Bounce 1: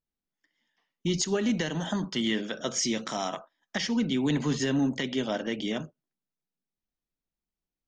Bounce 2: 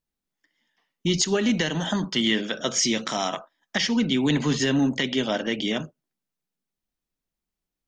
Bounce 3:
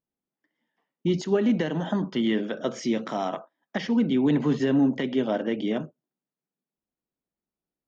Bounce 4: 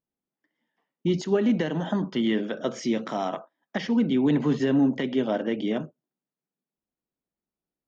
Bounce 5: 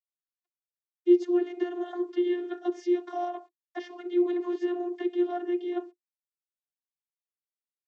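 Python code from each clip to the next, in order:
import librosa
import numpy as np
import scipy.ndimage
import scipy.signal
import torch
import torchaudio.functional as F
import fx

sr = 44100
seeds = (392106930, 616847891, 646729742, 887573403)

y1 = fx.dynamic_eq(x, sr, hz=3000.0, q=0.7, threshold_db=-44.0, ratio=4.0, max_db=4)
y1 = y1 * librosa.db_to_amplitude(4.0)
y2 = fx.bandpass_q(y1, sr, hz=370.0, q=0.55)
y2 = y2 * librosa.db_to_amplitude(1.5)
y3 = y2
y4 = fx.quant_dither(y3, sr, seeds[0], bits=10, dither='none')
y4 = fx.vocoder(y4, sr, bands=32, carrier='saw', carrier_hz=353.0)
y4 = y4 * librosa.db_to_amplitude(-2.5)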